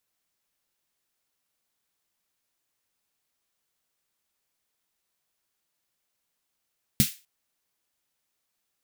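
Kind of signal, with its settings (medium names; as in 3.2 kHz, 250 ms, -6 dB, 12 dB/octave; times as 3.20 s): snare drum length 0.25 s, tones 140 Hz, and 210 Hz, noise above 2 kHz, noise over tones -4 dB, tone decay 0.10 s, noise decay 0.30 s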